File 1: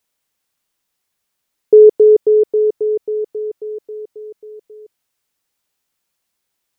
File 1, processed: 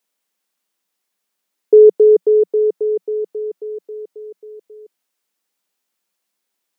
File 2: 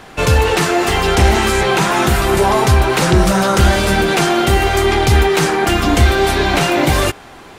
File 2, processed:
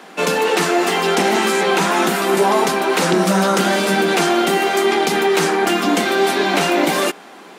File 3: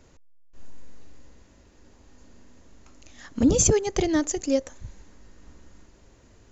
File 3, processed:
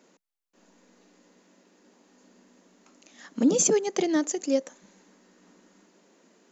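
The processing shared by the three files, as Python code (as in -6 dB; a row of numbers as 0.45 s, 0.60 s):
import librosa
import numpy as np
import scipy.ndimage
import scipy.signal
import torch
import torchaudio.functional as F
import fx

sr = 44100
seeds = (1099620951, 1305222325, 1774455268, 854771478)

y = scipy.signal.sosfilt(scipy.signal.ellip(4, 1.0, 40, 180.0, 'highpass', fs=sr, output='sos'), x)
y = F.gain(torch.from_numpy(y), -1.0).numpy()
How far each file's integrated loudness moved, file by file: -1.0 LU, -2.5 LU, -2.0 LU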